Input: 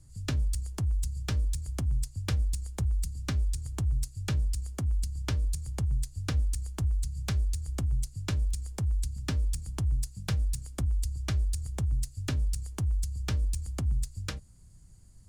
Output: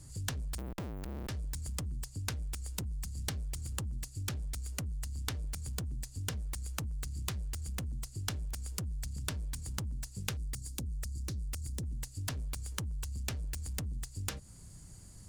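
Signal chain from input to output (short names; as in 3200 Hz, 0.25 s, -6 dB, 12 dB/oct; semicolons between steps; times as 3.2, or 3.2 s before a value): 0.58–1.29 Schmitt trigger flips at -36 dBFS; low shelf 110 Hz -10 dB; compressor 6:1, threshold -42 dBFS, peak gain reduction 12.5 dB; 10.37–11.83 band shelf 1200 Hz -16 dB 3 oct; added harmonics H 3 -11 dB, 7 -19 dB, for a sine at -25 dBFS; gain +13.5 dB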